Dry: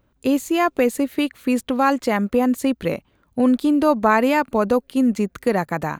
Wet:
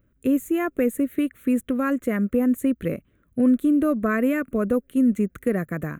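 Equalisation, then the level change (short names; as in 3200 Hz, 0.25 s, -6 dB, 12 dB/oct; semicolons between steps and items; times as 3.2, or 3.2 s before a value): bell 2900 Hz -7.5 dB 1.3 oct; dynamic EQ 4100 Hz, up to -6 dB, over -42 dBFS, Q 0.86; fixed phaser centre 2100 Hz, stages 4; 0.0 dB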